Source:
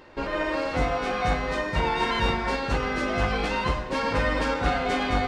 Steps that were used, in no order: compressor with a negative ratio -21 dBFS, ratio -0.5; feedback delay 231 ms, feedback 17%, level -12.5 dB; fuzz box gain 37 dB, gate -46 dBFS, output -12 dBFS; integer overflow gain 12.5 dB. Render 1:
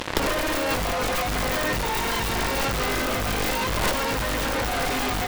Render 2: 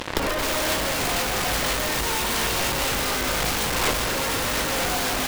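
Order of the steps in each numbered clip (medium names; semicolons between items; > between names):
feedback delay > fuzz box > integer overflow > compressor with a negative ratio; fuzz box > feedback delay > integer overflow > compressor with a negative ratio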